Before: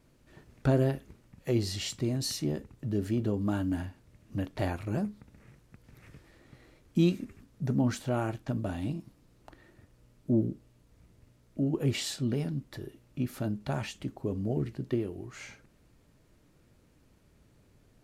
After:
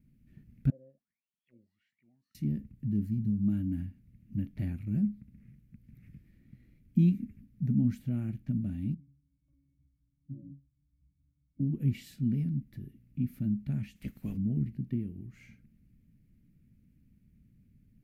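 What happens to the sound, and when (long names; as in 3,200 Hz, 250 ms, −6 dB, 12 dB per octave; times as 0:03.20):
0:00.70–0:02.35: envelope filter 530–3,800 Hz, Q 21, down, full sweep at −24 dBFS
0:03.06–0:03.43: gain on a spectral selection 230–3,800 Hz −9 dB
0:08.94–0:11.60: resonances in every octave C#, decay 0.3 s
0:13.95–0:14.36: ceiling on every frequency bin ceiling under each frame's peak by 26 dB
whole clip: drawn EQ curve 110 Hz 0 dB, 220 Hz +5 dB, 370 Hz −16 dB, 570 Hz −22 dB, 1,000 Hz −29 dB, 2,200 Hz −10 dB, 3,500 Hz −19 dB, 8,000 Hz −20 dB, 14,000 Hz −5 dB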